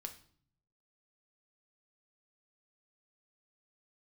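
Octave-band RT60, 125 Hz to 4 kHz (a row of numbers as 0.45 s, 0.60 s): 1.1 s, 0.85 s, 0.55 s, 0.50 s, 0.45 s, 0.45 s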